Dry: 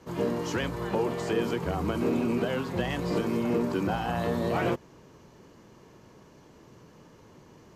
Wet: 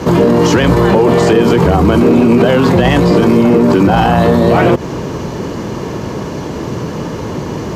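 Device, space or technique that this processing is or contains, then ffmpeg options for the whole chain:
mastering chain: -af "highpass=41,equalizer=f=4300:t=o:w=1.7:g=3.5,acompressor=threshold=0.0316:ratio=2,tiltshelf=f=1400:g=4,asoftclip=type=hard:threshold=0.1,alimiter=level_in=33.5:limit=0.891:release=50:level=0:latency=1,volume=0.891"

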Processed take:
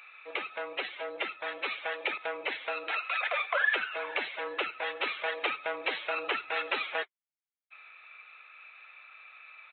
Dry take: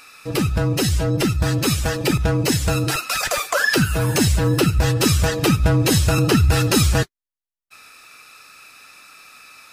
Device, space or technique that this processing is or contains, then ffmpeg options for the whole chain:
musical greeting card: -af "aresample=8000,aresample=44100,highpass=f=540:w=0.5412,highpass=f=540:w=1.3066,equalizer=f=2200:t=o:w=0.23:g=11,volume=0.376"

